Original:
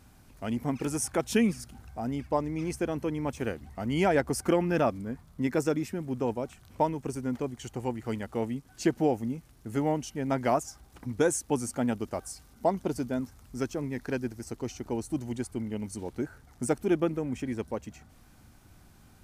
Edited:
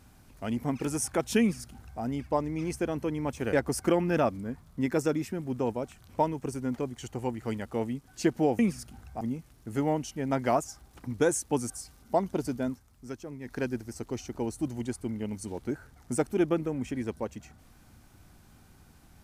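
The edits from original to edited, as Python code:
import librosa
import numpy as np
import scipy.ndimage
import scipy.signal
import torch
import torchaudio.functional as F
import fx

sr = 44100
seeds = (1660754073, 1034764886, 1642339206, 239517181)

y = fx.edit(x, sr, fx.duplicate(start_s=1.4, length_s=0.62, to_s=9.2),
    fx.cut(start_s=3.53, length_s=0.61),
    fx.cut(start_s=11.69, length_s=0.52),
    fx.fade_down_up(start_s=13.21, length_s=0.83, db=-8.0, fade_s=0.14, curve='qua'), tone=tone)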